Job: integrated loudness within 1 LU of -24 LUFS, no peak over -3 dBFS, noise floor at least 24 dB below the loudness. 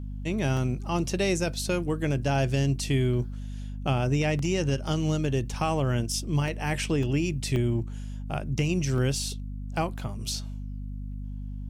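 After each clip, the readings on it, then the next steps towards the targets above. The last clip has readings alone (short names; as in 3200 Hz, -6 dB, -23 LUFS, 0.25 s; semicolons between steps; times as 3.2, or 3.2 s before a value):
dropouts 6; longest dropout 2.1 ms; hum 50 Hz; harmonics up to 250 Hz; hum level -33 dBFS; loudness -28.0 LUFS; peak -15.0 dBFS; loudness target -24.0 LUFS
-> interpolate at 0.57/4.39/6.48/7.03/7.56/8.98, 2.1 ms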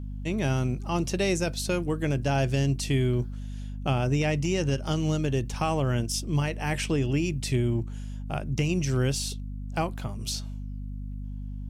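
dropouts 0; hum 50 Hz; harmonics up to 250 Hz; hum level -33 dBFS
-> notches 50/100/150/200/250 Hz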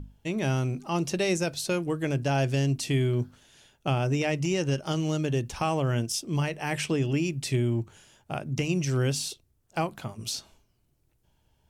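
hum none; loudness -28.5 LUFS; peak -15.5 dBFS; loudness target -24.0 LUFS
-> gain +4.5 dB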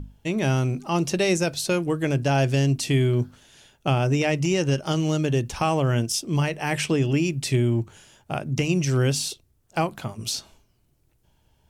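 loudness -24.0 LUFS; peak -11.0 dBFS; noise floor -65 dBFS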